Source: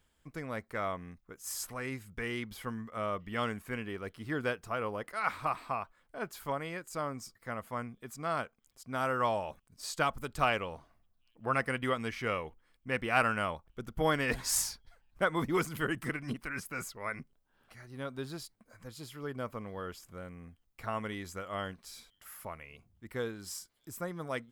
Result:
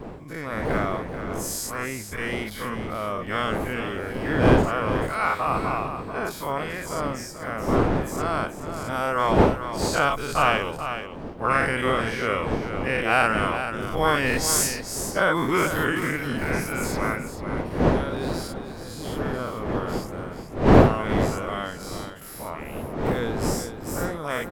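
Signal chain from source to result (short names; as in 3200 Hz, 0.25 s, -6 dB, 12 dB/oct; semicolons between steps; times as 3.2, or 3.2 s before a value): spectral dilation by 0.12 s; wind noise 470 Hz -31 dBFS; echo 0.435 s -9.5 dB; gain +3 dB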